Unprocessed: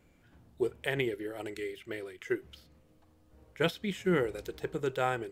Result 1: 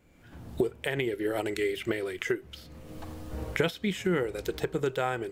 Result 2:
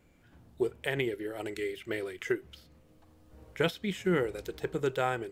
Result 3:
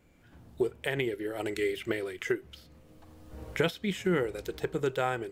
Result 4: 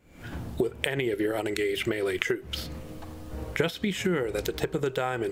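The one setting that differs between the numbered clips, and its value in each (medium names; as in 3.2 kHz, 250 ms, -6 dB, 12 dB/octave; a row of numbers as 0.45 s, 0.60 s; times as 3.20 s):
recorder AGC, rising by: 34 dB/s, 5.1 dB/s, 14 dB/s, 91 dB/s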